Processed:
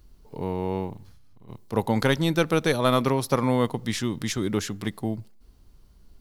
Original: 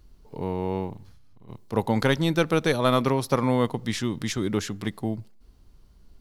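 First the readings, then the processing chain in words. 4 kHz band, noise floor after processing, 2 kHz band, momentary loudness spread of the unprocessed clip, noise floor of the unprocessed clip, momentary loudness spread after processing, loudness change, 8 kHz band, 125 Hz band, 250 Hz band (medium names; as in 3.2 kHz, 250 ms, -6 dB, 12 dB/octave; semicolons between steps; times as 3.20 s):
+0.5 dB, -55 dBFS, 0.0 dB, 10 LU, -55 dBFS, 10 LU, 0.0 dB, +2.0 dB, 0.0 dB, 0.0 dB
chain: treble shelf 9.3 kHz +5.5 dB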